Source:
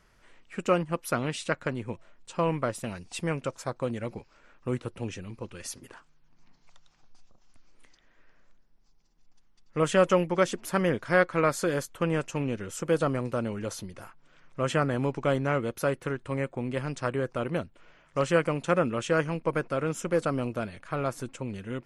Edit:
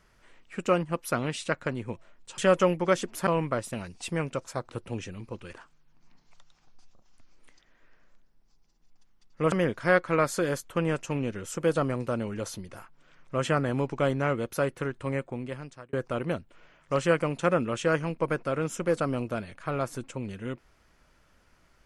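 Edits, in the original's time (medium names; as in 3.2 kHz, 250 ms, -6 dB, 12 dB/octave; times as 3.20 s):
3.80–4.79 s: delete
5.63–5.89 s: delete
9.88–10.77 s: move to 2.38 s
16.41–17.18 s: fade out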